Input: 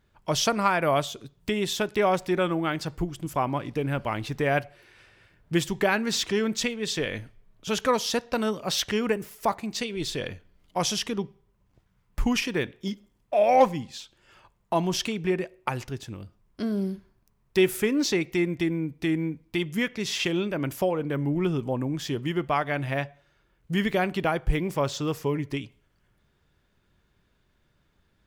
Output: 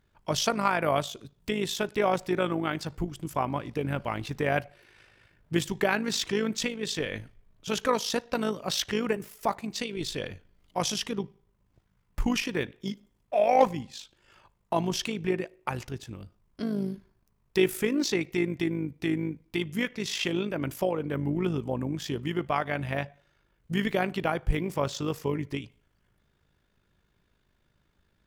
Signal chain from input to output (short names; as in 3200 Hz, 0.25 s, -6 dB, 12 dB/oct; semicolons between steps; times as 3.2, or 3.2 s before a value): AM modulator 52 Hz, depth 40%